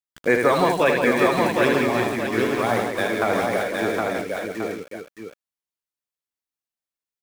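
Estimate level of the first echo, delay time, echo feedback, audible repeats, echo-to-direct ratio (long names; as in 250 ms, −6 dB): −5.0 dB, 77 ms, repeats not evenly spaced, 9, 2.5 dB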